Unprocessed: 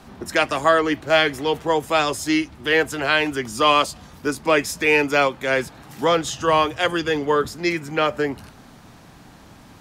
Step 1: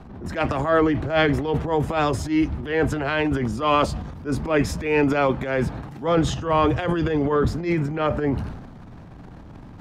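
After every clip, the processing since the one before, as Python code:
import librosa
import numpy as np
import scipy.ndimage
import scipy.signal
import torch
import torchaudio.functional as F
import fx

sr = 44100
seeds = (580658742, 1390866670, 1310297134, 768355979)

y = fx.lowpass(x, sr, hz=1100.0, slope=6)
y = fx.low_shelf(y, sr, hz=160.0, db=11.0)
y = fx.transient(y, sr, attack_db=-11, sustain_db=9)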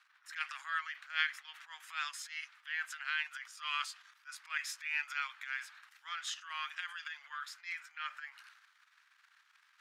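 y = scipy.signal.sosfilt(scipy.signal.butter(6, 1400.0, 'highpass', fs=sr, output='sos'), x)
y = y * 10.0 ** (-7.5 / 20.0)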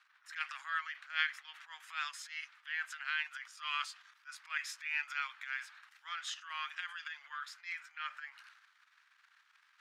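y = fx.high_shelf(x, sr, hz=8400.0, db=-7.5)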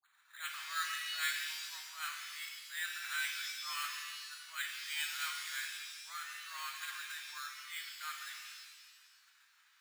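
y = fx.dispersion(x, sr, late='highs', ms=56.0, hz=1100.0)
y = np.repeat(scipy.signal.resample_poly(y, 1, 8), 8)[:len(y)]
y = fx.rev_shimmer(y, sr, seeds[0], rt60_s=1.3, semitones=7, shimmer_db=-2, drr_db=3.0)
y = y * 10.0 ** (-3.0 / 20.0)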